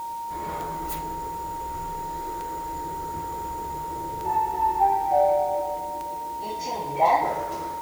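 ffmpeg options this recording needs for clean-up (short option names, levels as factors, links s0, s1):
-af "adeclick=t=4,bandreject=f=930:w=30,afwtdn=0.0032"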